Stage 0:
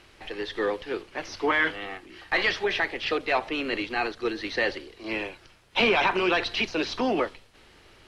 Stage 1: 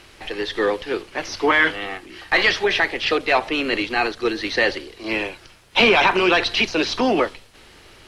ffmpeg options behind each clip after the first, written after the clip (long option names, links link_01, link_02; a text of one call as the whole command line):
ffmpeg -i in.wav -af "highshelf=frequency=5300:gain=5.5,volume=6.5dB" out.wav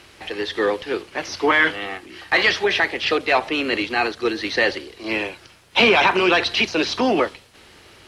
ffmpeg -i in.wav -af "highpass=57" out.wav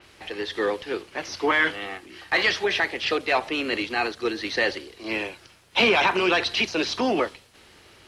ffmpeg -i in.wav -af "adynamicequalizer=threshold=0.0316:dfrequency=4800:dqfactor=0.7:tfrequency=4800:tqfactor=0.7:attack=5:release=100:ratio=0.375:range=1.5:mode=boostabove:tftype=highshelf,volume=-4.5dB" out.wav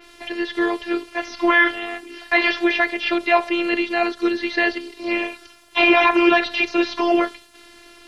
ffmpeg -i in.wav -filter_complex "[0:a]afftfilt=real='hypot(re,im)*cos(PI*b)':imag='0':win_size=512:overlap=0.75,acrossover=split=3400[link_01][link_02];[link_02]acompressor=threshold=-49dB:ratio=4:attack=1:release=60[link_03];[link_01][link_03]amix=inputs=2:normalize=0,volume=9dB" out.wav